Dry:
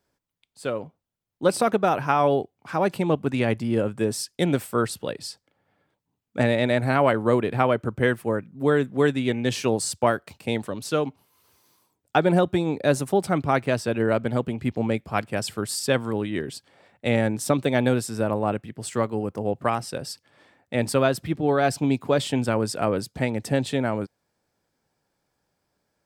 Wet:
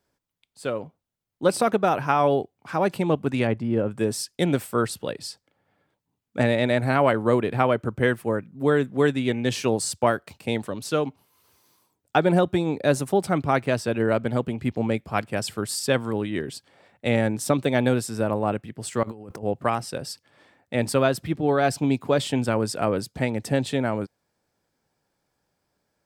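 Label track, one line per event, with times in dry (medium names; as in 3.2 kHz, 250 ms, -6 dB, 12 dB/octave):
3.470000	3.910000	low-pass 1.5 kHz 6 dB/octave
19.030000	19.430000	compressor with a negative ratio -39 dBFS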